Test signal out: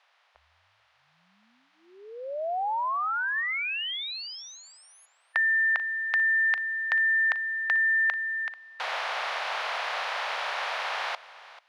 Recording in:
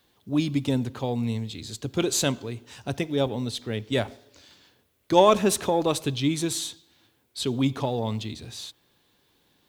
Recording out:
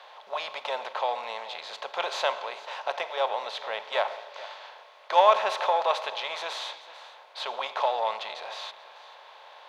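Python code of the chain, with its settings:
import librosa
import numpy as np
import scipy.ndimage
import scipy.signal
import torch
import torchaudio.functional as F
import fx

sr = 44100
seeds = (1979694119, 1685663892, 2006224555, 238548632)

y = fx.bin_compress(x, sr, power=0.6)
y = scipy.signal.sosfilt(scipy.signal.cheby2(4, 40, 320.0, 'highpass', fs=sr, output='sos'), y)
y = fx.air_absorb(y, sr, metres=300.0)
y = y + 10.0 ** (-17.5 / 20.0) * np.pad(y, (int(439 * sr / 1000.0), 0))[:len(y)]
y = F.gain(torch.from_numpy(y), 2.0).numpy()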